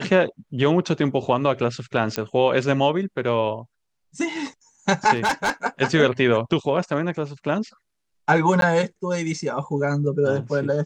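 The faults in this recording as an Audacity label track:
2.160000	2.160000	click −9 dBFS
5.150000	5.500000	clipping −17 dBFS
8.610000	8.620000	drop-out 12 ms

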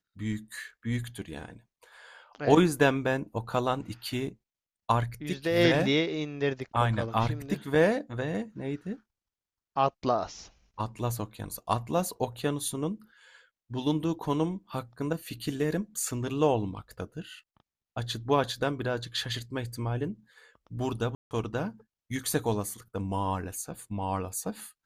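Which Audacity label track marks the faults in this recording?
21.150000	21.310000	drop-out 159 ms

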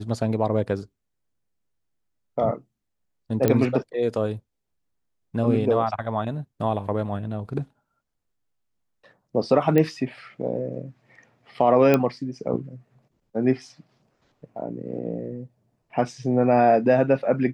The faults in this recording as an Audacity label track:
3.480000	3.480000	click −7 dBFS
9.780000	9.780000	click −10 dBFS
11.940000	11.940000	click −7 dBFS

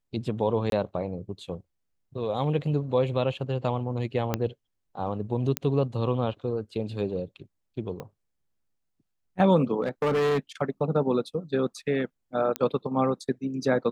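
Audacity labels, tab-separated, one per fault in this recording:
0.700000	0.720000	drop-out 22 ms
4.340000	4.340000	click −11 dBFS
5.570000	5.570000	click −8 dBFS
8.000000	8.000000	click −23 dBFS
9.820000	10.380000	clipping −21.5 dBFS
12.560000	12.560000	click −12 dBFS

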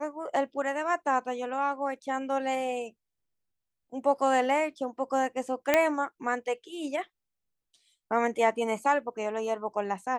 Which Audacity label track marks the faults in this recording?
5.740000	5.740000	click −8 dBFS

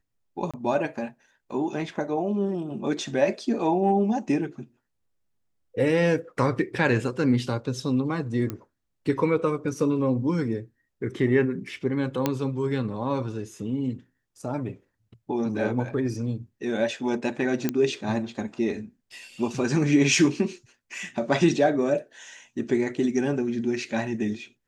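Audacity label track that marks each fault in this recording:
0.510000	0.540000	drop-out 26 ms
8.500000	8.500000	click −17 dBFS
12.260000	12.260000	click −9 dBFS
17.690000	17.690000	click −11 dBFS

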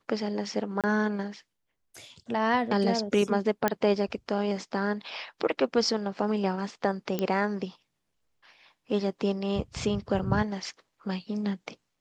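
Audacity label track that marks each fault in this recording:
0.810000	0.840000	drop-out 27 ms
3.680000	3.680000	click −10 dBFS
7.190000	7.190000	click −15 dBFS
10.190000	10.190000	drop-out 2.8 ms

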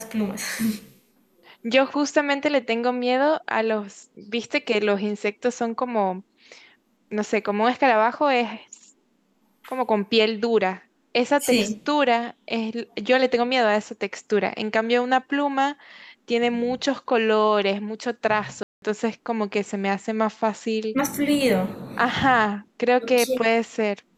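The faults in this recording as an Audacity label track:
18.630000	18.820000	drop-out 192 ms

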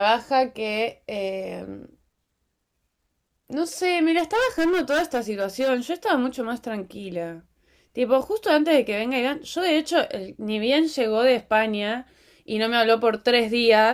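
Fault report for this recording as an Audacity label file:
4.180000	5.700000	clipping −18 dBFS

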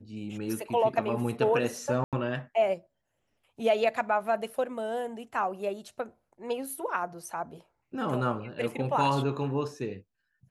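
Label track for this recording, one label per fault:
2.040000	2.130000	drop-out 87 ms

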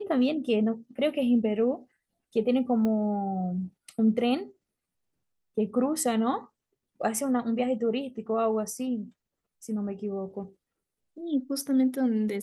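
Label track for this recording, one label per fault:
2.850000	2.850000	click −19 dBFS

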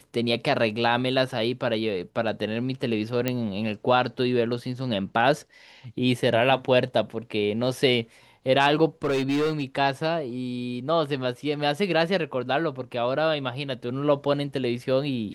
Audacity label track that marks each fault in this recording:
3.280000	3.280000	click −10 dBFS
9.040000	9.640000	clipping −20.5 dBFS

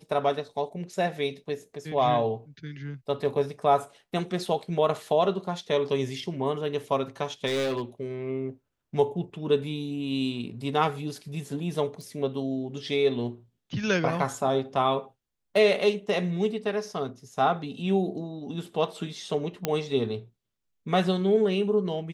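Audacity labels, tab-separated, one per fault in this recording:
7.460000	7.820000	clipping −24 dBFS
12.010000	12.010000	click
19.650000	19.650000	click −10 dBFS

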